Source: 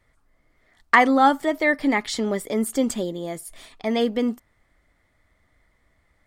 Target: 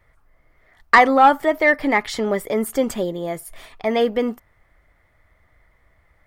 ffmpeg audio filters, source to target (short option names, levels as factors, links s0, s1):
-af "equalizer=f=250:t=o:w=1:g=-8,equalizer=f=4000:t=o:w=1:g=-6,equalizer=f=8000:t=o:w=1:g=-9,acontrast=72"